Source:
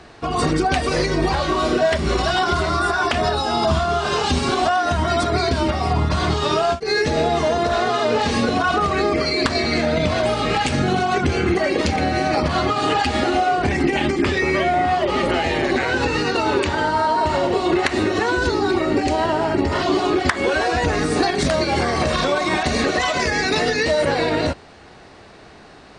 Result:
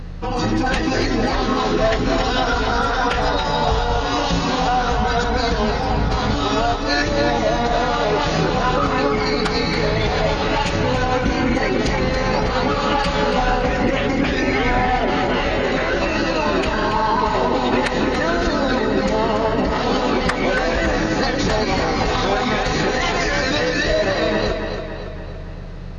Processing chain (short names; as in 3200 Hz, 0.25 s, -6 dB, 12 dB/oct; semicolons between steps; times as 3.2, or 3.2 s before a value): hum 50 Hz, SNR 10 dB; formant-preserving pitch shift -6.5 st; tape echo 0.282 s, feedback 57%, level -5.5 dB, low-pass 5300 Hz